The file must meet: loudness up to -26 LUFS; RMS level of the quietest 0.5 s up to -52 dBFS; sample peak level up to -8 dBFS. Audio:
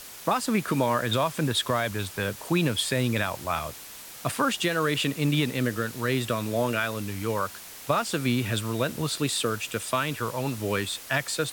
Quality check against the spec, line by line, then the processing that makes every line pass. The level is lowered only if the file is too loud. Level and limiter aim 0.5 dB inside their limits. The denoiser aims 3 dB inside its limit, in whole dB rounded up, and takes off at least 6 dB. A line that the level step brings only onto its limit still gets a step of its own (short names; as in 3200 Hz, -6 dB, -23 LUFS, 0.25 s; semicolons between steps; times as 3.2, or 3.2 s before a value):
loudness -27.0 LUFS: OK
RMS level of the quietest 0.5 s -43 dBFS: fail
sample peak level -10.5 dBFS: OK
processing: denoiser 12 dB, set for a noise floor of -43 dBFS